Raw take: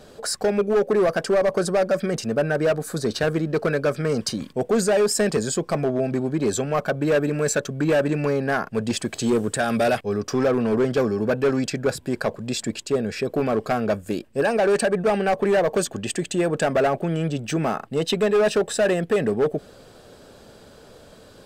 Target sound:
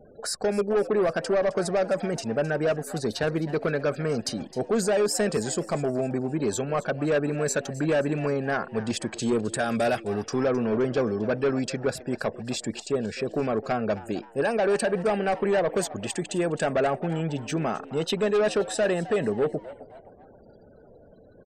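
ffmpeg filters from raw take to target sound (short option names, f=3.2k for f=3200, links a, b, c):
-filter_complex "[0:a]afftfilt=real='re*gte(hypot(re,im),0.00708)':imag='im*gte(hypot(re,im),0.00708)':win_size=1024:overlap=0.75,asplit=4[a][b][c][d];[b]adelay=262,afreqshift=110,volume=-17dB[e];[c]adelay=524,afreqshift=220,volume=-24.7dB[f];[d]adelay=786,afreqshift=330,volume=-32.5dB[g];[a][e][f][g]amix=inputs=4:normalize=0,volume=-4dB"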